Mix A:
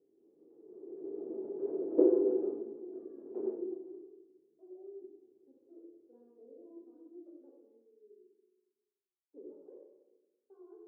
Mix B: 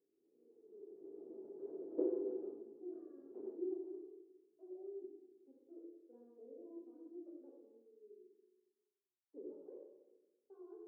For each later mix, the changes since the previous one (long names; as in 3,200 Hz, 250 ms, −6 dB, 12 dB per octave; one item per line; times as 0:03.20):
background −11.5 dB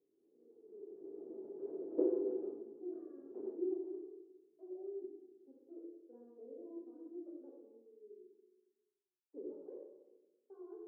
speech +3.5 dB
background +3.5 dB